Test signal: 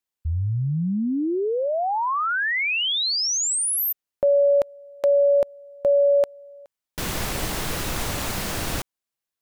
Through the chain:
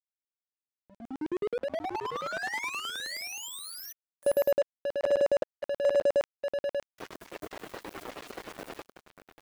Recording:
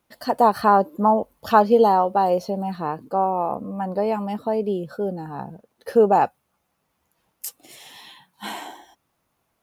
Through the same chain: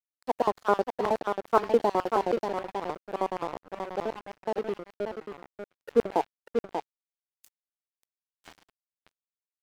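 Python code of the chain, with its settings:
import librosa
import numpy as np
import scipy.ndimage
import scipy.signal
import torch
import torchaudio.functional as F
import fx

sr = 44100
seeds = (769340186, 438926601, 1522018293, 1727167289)

y = fx.spec_quant(x, sr, step_db=30)
y = fx.high_shelf(y, sr, hz=2100.0, db=-7.0)
y = fx.filter_lfo_highpass(y, sr, shape='square', hz=9.5, low_hz=350.0, high_hz=1800.0, q=1.4)
y = y + 10.0 ** (-5.5 / 20.0) * np.pad(y, (int(588 * sr / 1000.0), 0))[:len(y)]
y = np.sign(y) * np.maximum(np.abs(y) - 10.0 ** (-31.0 / 20.0), 0.0)
y = F.gain(torch.from_numpy(y), -5.0).numpy()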